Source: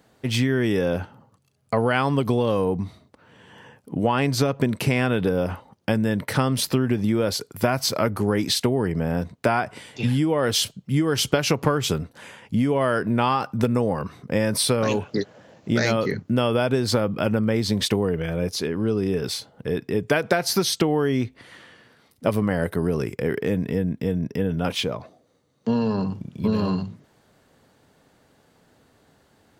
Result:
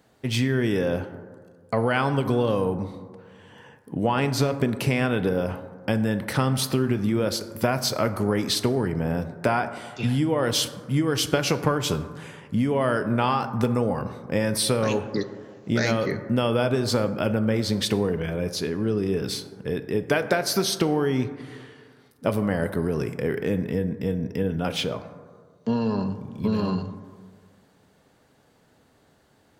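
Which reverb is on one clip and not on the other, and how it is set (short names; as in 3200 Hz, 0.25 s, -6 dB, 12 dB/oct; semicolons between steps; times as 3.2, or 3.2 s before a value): plate-style reverb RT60 1.8 s, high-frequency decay 0.3×, DRR 10 dB; gain -2 dB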